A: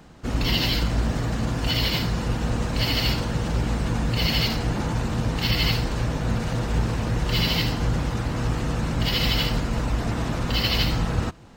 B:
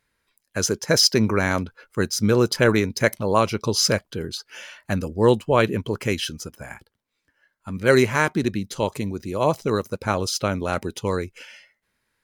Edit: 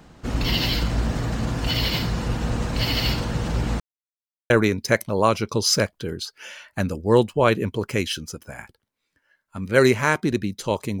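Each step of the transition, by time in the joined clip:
A
3.8–4.5 mute
4.5 switch to B from 2.62 s

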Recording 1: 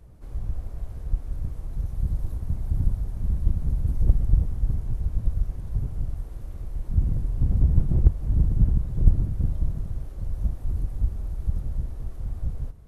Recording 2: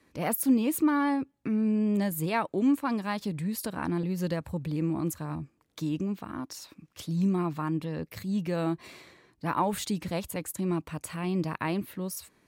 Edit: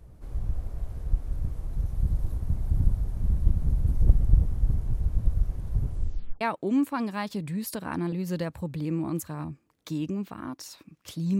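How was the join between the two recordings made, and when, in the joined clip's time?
recording 1
5.88 tape stop 0.53 s
6.41 switch to recording 2 from 2.32 s

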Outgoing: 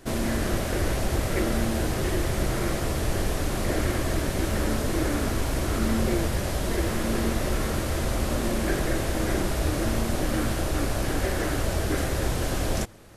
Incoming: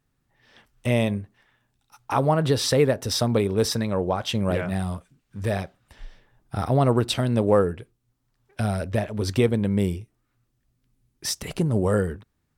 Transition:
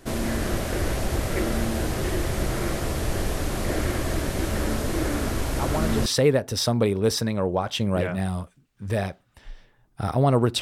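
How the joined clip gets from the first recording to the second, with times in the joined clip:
outgoing
5.59 add incoming from 2.13 s 0.47 s -8 dB
6.06 switch to incoming from 2.6 s

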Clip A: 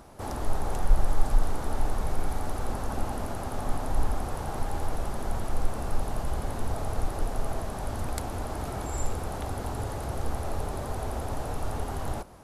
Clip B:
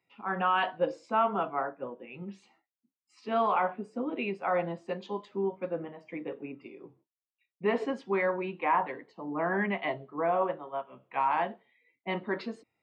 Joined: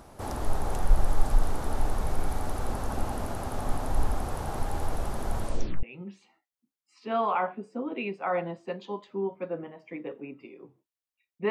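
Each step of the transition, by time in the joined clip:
clip A
5.43 tape stop 0.40 s
5.83 switch to clip B from 2.04 s

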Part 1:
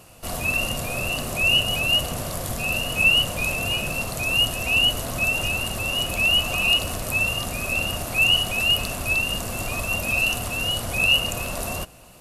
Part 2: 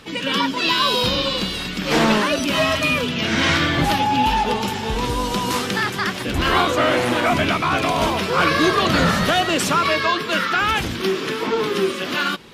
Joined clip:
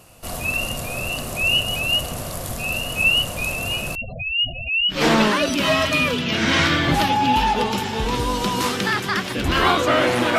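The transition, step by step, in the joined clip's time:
part 1
3.95–4.98 spectral gate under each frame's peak -10 dB strong
4.93 switch to part 2 from 1.83 s, crossfade 0.10 s

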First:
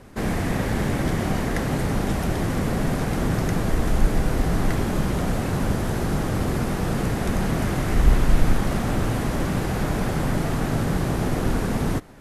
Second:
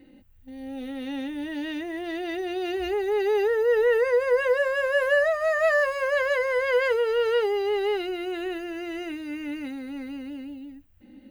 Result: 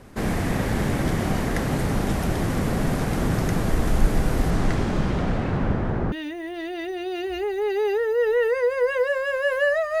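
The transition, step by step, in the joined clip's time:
first
4.5–6.12 LPF 9700 Hz -> 1400 Hz
6.12 switch to second from 1.62 s

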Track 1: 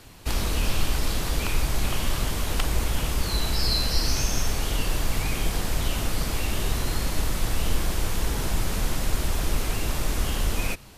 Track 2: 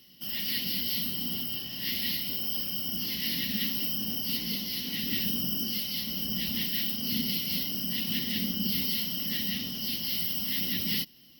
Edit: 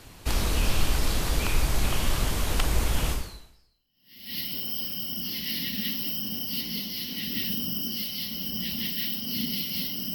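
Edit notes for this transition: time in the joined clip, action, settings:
track 1
3.75 switch to track 2 from 1.51 s, crossfade 1.28 s exponential

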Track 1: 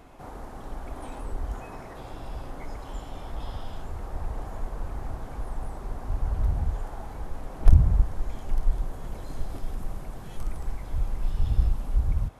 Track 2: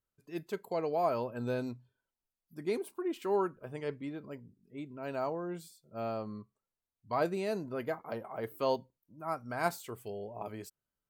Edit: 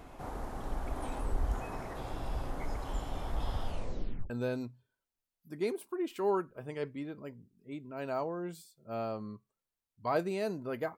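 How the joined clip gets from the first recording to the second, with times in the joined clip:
track 1
3.65 tape stop 0.65 s
4.3 switch to track 2 from 1.36 s

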